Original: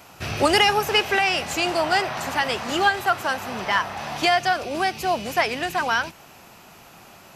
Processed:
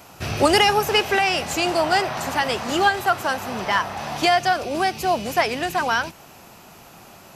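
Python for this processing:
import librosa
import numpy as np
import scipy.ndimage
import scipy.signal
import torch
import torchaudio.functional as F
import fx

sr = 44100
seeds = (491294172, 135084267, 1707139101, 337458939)

y = fx.peak_eq(x, sr, hz=2200.0, db=-3.5, octaves=2.1)
y = y * librosa.db_to_amplitude(3.0)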